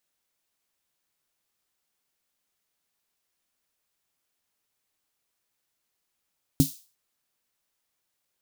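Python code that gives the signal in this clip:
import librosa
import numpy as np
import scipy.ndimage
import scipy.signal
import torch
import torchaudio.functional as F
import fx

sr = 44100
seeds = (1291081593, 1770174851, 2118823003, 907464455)

y = fx.drum_snare(sr, seeds[0], length_s=0.35, hz=150.0, second_hz=270.0, noise_db=-12, noise_from_hz=3800.0, decay_s=0.13, noise_decay_s=0.39)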